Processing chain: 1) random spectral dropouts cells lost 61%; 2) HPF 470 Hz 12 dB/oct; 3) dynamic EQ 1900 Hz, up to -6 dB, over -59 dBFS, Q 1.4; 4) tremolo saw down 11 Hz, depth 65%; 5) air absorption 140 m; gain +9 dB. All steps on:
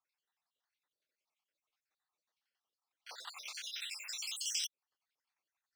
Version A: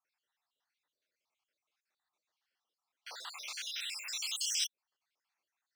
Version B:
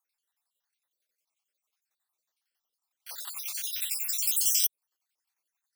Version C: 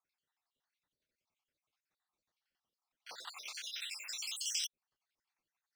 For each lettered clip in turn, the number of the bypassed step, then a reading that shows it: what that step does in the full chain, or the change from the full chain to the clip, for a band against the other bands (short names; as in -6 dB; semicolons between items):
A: 4, loudness change +3.5 LU; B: 5, 8 kHz band +11.0 dB; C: 2, 500 Hz band +2.0 dB